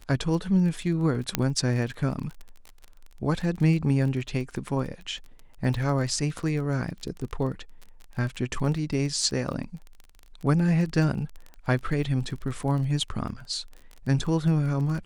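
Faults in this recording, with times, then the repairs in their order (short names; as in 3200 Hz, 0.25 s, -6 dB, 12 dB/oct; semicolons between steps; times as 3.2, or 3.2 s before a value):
crackle 24/s -33 dBFS
1.35 pop -6 dBFS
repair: de-click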